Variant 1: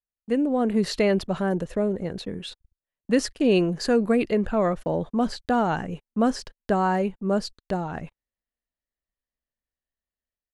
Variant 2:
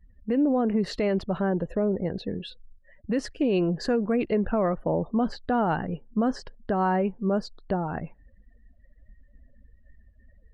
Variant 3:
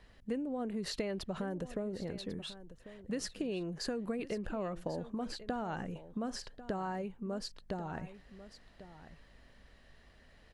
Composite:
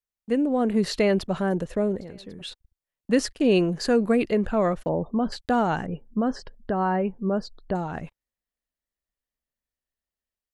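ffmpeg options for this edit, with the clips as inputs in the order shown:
-filter_complex "[1:a]asplit=2[a][b];[0:a]asplit=4[c][d][e][f];[c]atrim=end=2.012[g];[2:a]atrim=start=2.008:end=2.412[h];[d]atrim=start=2.408:end=4.892[i];[a]atrim=start=4.888:end=5.322[j];[e]atrim=start=5.318:end=5.862[k];[b]atrim=start=5.858:end=7.752[l];[f]atrim=start=7.748[m];[g][h]acrossfade=d=0.004:c1=hsin:c2=hsin[n];[n][i]acrossfade=d=0.004:c1=hsin:c2=hsin[o];[o][j]acrossfade=d=0.004:c1=hsin:c2=hsin[p];[p][k]acrossfade=d=0.004:c1=hsin:c2=hsin[q];[q][l]acrossfade=d=0.004:c1=hsin:c2=hsin[r];[r][m]acrossfade=d=0.004:c1=hsin:c2=hsin"

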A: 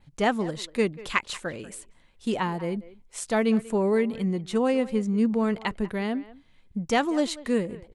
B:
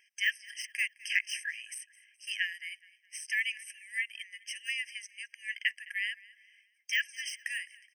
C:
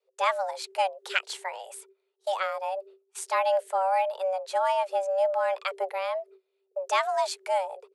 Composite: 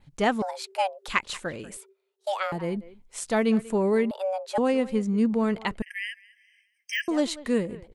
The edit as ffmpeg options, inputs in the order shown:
-filter_complex "[2:a]asplit=3[a][b][c];[0:a]asplit=5[d][e][f][g][h];[d]atrim=end=0.422[i];[a]atrim=start=0.418:end=1.082[j];[e]atrim=start=1.078:end=1.772[k];[b]atrim=start=1.768:end=2.522[l];[f]atrim=start=2.518:end=4.112[m];[c]atrim=start=4.108:end=4.582[n];[g]atrim=start=4.578:end=5.822[o];[1:a]atrim=start=5.818:end=7.082[p];[h]atrim=start=7.078[q];[i][j]acrossfade=d=0.004:c1=hsin:c2=hsin[r];[r][k]acrossfade=d=0.004:c1=hsin:c2=hsin[s];[s][l]acrossfade=d=0.004:c1=hsin:c2=hsin[t];[t][m]acrossfade=d=0.004:c1=hsin:c2=hsin[u];[u][n]acrossfade=d=0.004:c1=hsin:c2=hsin[v];[v][o]acrossfade=d=0.004:c1=hsin:c2=hsin[w];[w][p]acrossfade=d=0.004:c1=hsin:c2=hsin[x];[x][q]acrossfade=d=0.004:c1=hsin:c2=hsin"

